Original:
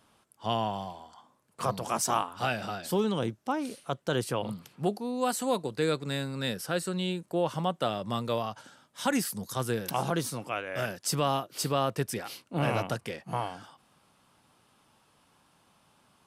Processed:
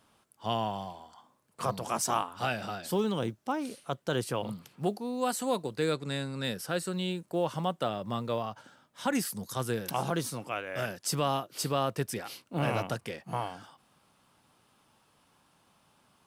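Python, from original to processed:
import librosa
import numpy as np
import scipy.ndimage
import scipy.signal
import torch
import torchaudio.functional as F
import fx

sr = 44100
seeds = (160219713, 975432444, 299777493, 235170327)

y = fx.high_shelf(x, sr, hz=3800.0, db=-7.5, at=(7.83, 9.15))
y = fx.quant_companded(y, sr, bits=8)
y = fx.brickwall_lowpass(y, sr, high_hz=12000.0, at=(5.94, 6.44))
y = F.gain(torch.from_numpy(y), -1.5).numpy()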